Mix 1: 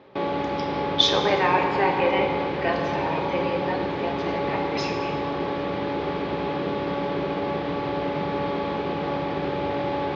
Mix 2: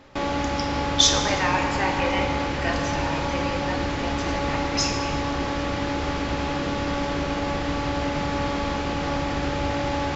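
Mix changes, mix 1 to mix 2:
speech -4.0 dB; master: remove cabinet simulation 150–3600 Hz, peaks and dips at 180 Hz +5 dB, 260 Hz -6 dB, 400 Hz +9 dB, 1.4 kHz -5 dB, 1.9 kHz -4 dB, 2.8 kHz -5 dB

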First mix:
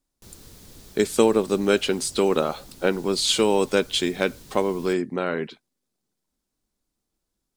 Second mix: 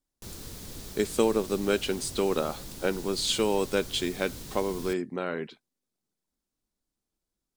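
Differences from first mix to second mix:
speech -6.0 dB; background +5.0 dB

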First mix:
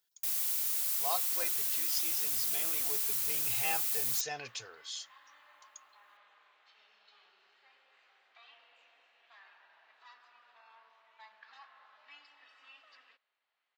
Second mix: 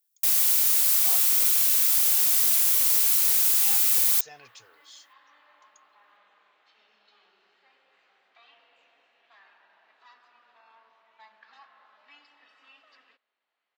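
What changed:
speech -8.0 dB; first sound +11.5 dB; second sound: remove high-pass 760 Hz 6 dB/octave

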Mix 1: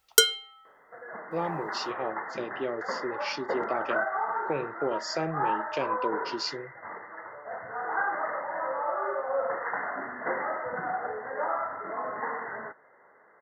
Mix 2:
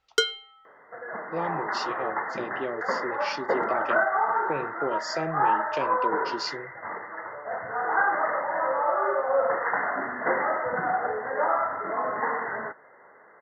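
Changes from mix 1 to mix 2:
first sound: add distance through air 160 m; second sound +5.5 dB

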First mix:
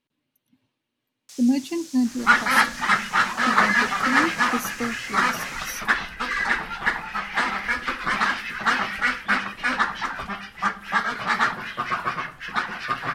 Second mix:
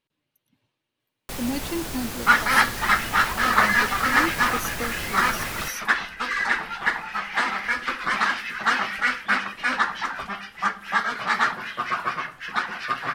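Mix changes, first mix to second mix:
speech: add peaking EQ 250 Hz -9.5 dB 0.36 oct; first sound: remove band-pass filter 6.1 kHz, Q 2.3; second sound: add bass shelf 180 Hz -8 dB

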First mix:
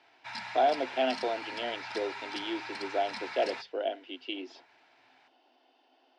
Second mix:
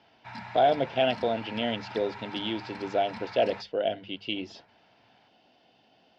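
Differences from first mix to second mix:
speech: remove rippled Chebyshev high-pass 250 Hz, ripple 6 dB; background: add tilt EQ -4 dB/octave

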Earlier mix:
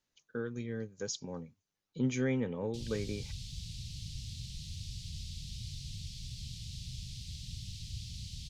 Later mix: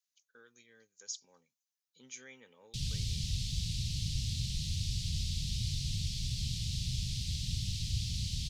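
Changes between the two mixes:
speech: add differentiator; background +8.0 dB

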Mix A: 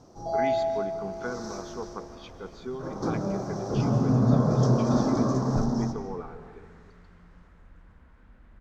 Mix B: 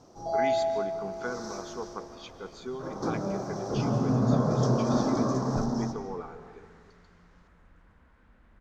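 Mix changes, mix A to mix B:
speech: remove distance through air 99 m; second sound: send off; master: add bass shelf 220 Hz -5.5 dB

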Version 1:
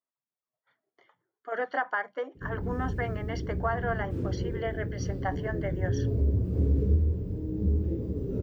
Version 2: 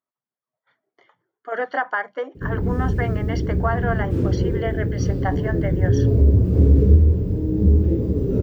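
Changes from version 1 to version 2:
speech +6.0 dB; background +11.0 dB

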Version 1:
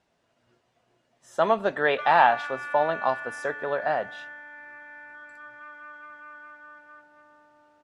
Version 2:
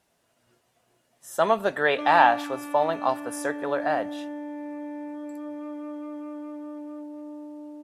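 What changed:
background: remove resonant high-pass 1.5 kHz, resonance Q 10; master: remove distance through air 98 m

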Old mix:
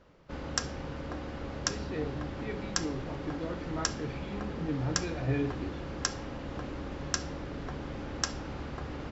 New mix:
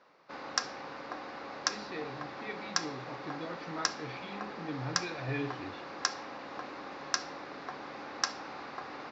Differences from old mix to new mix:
background: add cabinet simulation 270–5100 Hz, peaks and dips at 770 Hz +6 dB, 1.1 kHz +5 dB, 3.1 kHz -9 dB; master: add tilt shelf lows -6 dB, about 1.2 kHz

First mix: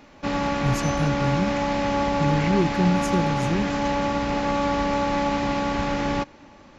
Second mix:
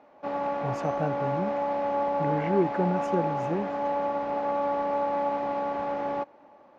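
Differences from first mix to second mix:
speech +8.0 dB; master: add band-pass filter 680 Hz, Q 1.7

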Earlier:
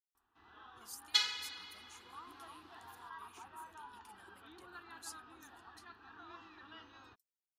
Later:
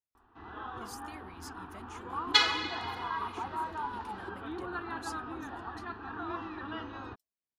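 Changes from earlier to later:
second sound: entry +1.20 s; master: remove pre-emphasis filter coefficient 0.9

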